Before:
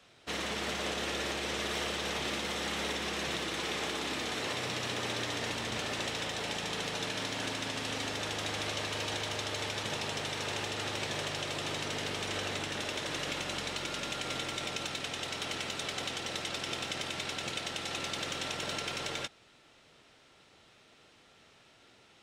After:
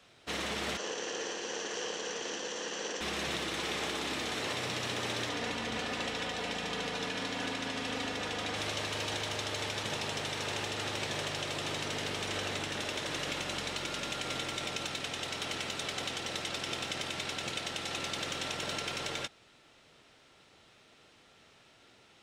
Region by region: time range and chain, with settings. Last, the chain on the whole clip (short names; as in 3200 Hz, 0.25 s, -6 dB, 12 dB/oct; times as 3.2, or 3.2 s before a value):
0.77–3.01 minimum comb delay 0.68 ms + speaker cabinet 330–6600 Hz, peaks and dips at 480 Hz +9 dB, 740 Hz +7 dB, 1300 Hz -9 dB, 2600 Hz -4 dB, 4200 Hz -6 dB, 6300 Hz +7 dB
5.29–8.56 high shelf 6500 Hz -9 dB + comb 4.1 ms, depth 44%
whole clip: dry